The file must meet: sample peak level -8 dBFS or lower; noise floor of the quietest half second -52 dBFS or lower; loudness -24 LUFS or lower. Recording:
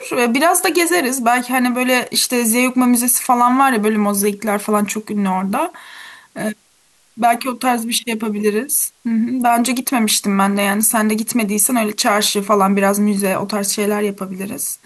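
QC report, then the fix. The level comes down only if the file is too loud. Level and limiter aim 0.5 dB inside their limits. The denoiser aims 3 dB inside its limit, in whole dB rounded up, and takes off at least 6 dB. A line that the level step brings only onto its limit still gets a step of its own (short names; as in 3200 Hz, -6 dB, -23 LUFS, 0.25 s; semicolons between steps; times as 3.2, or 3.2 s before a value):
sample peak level -4.0 dBFS: fail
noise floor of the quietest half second -55 dBFS: OK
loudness -16.0 LUFS: fail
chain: gain -8.5 dB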